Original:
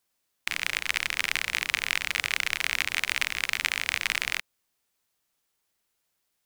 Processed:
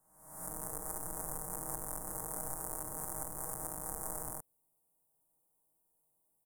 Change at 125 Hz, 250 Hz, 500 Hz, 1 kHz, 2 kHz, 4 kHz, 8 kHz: +1.5, +1.5, +1.0, -6.0, -32.0, -37.5, -3.5 dB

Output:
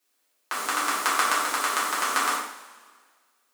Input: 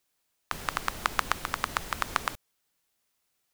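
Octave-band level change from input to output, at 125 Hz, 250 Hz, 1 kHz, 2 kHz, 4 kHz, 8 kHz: under -15 dB, +5.0 dB, +7.0 dB, +7.0 dB, +7.0 dB, +12.0 dB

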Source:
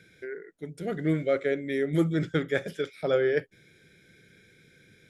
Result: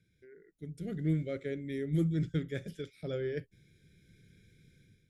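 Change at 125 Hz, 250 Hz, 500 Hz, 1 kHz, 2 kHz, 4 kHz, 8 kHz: -1.0 dB, -5.5 dB, -11.5 dB, under -15 dB, -14.0 dB, -10.0 dB, n/a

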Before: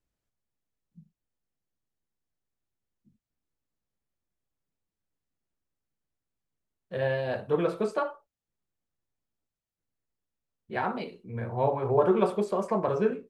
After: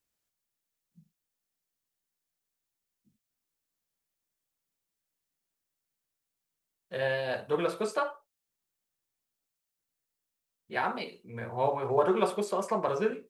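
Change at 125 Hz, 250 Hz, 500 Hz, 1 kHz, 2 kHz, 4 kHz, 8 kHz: -7.0 dB, -5.0 dB, -2.5 dB, -0.5 dB, +2.0 dB, +4.5 dB, n/a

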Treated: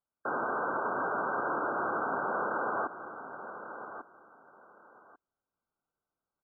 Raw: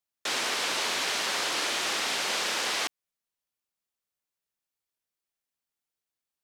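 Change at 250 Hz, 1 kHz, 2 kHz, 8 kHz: +3.5 dB, +3.5 dB, -4.5 dB, under -40 dB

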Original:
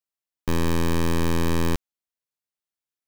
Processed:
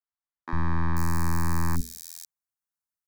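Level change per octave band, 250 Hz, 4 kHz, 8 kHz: -6.5, -10.5, -2.0 dB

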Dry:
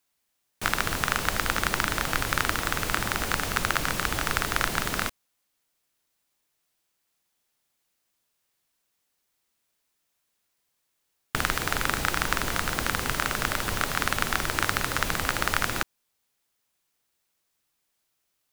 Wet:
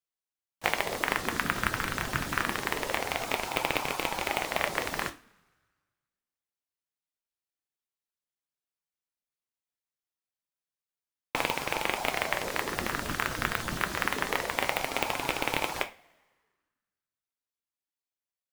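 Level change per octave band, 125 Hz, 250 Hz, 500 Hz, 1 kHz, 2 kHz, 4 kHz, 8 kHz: -7.0, -3.0, +1.0, -3.0, -3.5, -4.0, -7.0 dB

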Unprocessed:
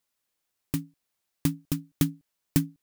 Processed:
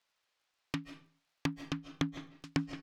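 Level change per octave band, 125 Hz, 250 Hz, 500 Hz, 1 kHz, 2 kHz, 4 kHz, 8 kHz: -10.0, -8.0, -3.0, +3.5, +1.5, -2.0, -14.0 dB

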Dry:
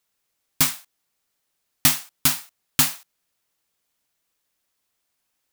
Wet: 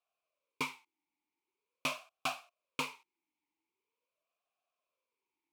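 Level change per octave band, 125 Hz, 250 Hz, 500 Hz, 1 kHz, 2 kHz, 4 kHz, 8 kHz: -21.5, -15.0, -2.5, -7.0, -10.0, -16.5, -26.0 dB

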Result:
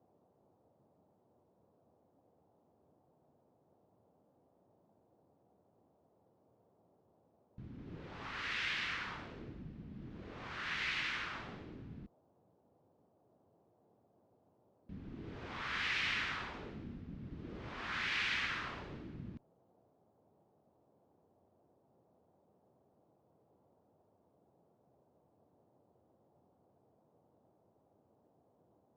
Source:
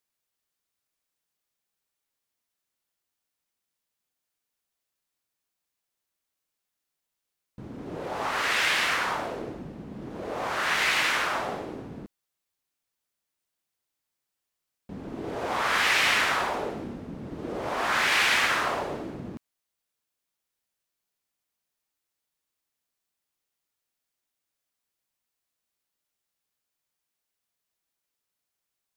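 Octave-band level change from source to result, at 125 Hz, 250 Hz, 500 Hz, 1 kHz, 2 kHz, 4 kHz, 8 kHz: -6.5, -11.5, -19.5, -17.5, -13.0, -13.0, -22.0 dB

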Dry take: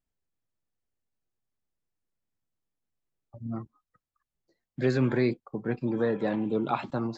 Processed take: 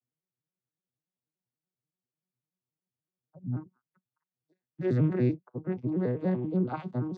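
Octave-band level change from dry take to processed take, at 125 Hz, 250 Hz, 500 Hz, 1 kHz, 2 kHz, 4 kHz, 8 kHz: +3.0 dB, -1.0 dB, -3.5 dB, -7.5 dB, -10.0 dB, under -10 dB, n/a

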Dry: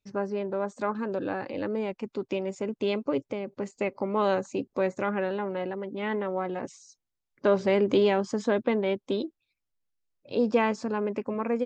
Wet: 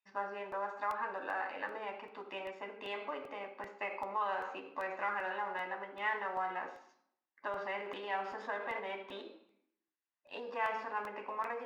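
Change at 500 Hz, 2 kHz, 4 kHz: -15.5, -2.0, -9.5 dB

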